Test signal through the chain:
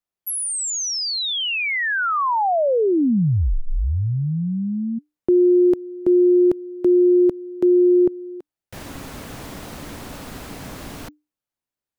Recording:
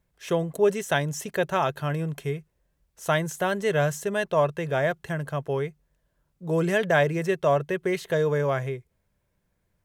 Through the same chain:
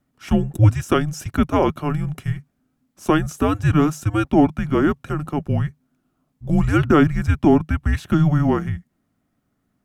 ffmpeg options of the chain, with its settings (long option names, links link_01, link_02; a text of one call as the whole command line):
ffmpeg -i in.wav -af "equalizer=frequency=560:width=0.35:gain=8,afreqshift=-300" out.wav